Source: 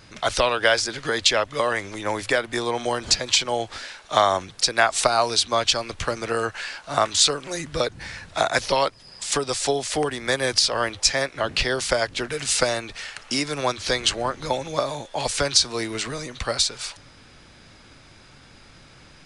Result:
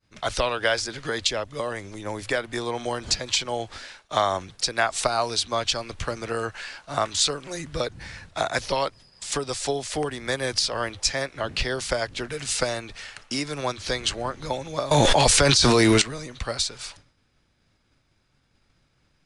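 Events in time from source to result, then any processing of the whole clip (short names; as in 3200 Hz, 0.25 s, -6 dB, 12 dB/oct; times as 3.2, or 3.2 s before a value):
1.27–2.22 bell 1800 Hz -5.5 dB 2.7 oct
14.91–16.02 fast leveller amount 100%
whole clip: expander -38 dBFS; low shelf 200 Hz +5.5 dB; gain -4.5 dB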